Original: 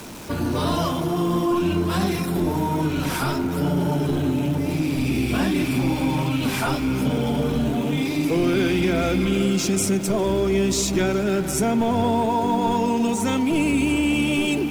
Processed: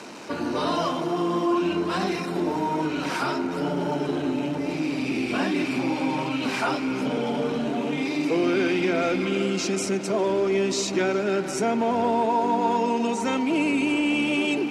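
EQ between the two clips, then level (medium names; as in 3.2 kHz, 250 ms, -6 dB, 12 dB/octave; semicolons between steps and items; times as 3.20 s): band-pass 280–5500 Hz; band-stop 3.4 kHz, Q 11; 0.0 dB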